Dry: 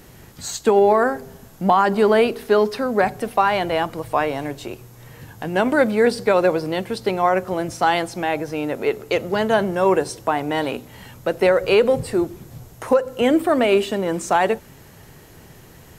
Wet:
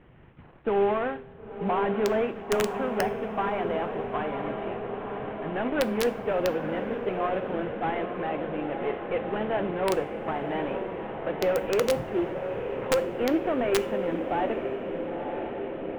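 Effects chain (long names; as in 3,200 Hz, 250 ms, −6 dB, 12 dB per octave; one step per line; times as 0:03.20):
variable-slope delta modulation 16 kbit/s
on a send: feedback delay with all-pass diffusion 970 ms, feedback 75%, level −7 dB
on the sum: wrap-around overflow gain 7.5 dB
coupled-rooms reverb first 0.4 s, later 5 s, from −21 dB, DRR 14.5 dB
one half of a high-frequency compander decoder only
level −8 dB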